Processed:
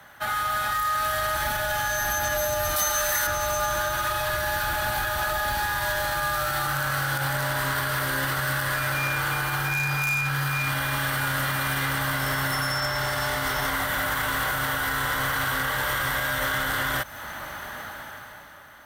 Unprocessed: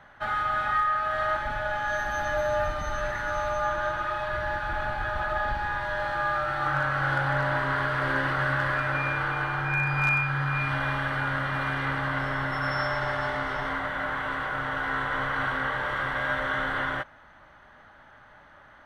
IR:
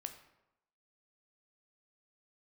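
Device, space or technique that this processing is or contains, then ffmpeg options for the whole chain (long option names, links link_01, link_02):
FM broadcast chain: -filter_complex "[0:a]asettb=1/sr,asplit=3[link_01][link_02][link_03];[link_01]atrim=end=2.764[link_04];[link_02]atrim=start=2.76:end=3.27,asetpts=PTS-STARTPTS,afade=type=in:duration=0.004:curve=qsin,afade=type=out:start_time=0.506:duration=0.004:curve=qsin,bass=frequency=250:gain=-13,treble=frequency=4000:gain=14[link_05];[link_03]atrim=start=3.266[link_06];[link_04][link_05]acrossfade=duration=0.004:curve1=hsin:curve2=qsin[link_07];[link_07][link_06]acrossfade=duration=0.004:curve1=qsin:curve2=hsin,highpass=47,dynaudnorm=framelen=120:gausssize=17:maxgain=16dB,acrossover=split=120|3900[link_08][link_09][link_10];[link_08]acompressor=threshold=-35dB:ratio=4[link_11];[link_09]acompressor=threshold=-27dB:ratio=4[link_12];[link_10]acompressor=threshold=-46dB:ratio=4[link_13];[link_11][link_12][link_13]amix=inputs=3:normalize=0,aemphasis=mode=production:type=50fm,alimiter=limit=-20dB:level=0:latency=1:release=57,asoftclip=type=hard:threshold=-24dB,lowpass=frequency=15000:width=0.5412,lowpass=frequency=15000:width=1.3066,aemphasis=mode=production:type=50fm,volume=2.5dB"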